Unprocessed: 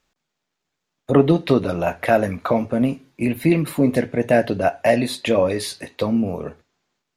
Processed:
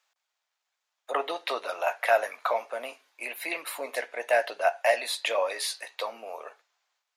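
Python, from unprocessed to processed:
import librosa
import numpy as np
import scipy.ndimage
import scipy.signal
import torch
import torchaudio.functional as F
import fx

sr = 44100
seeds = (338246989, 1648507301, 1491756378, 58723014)

y = scipy.signal.sosfilt(scipy.signal.butter(4, 670.0, 'highpass', fs=sr, output='sos'), x)
y = y * 10.0 ** (-2.0 / 20.0)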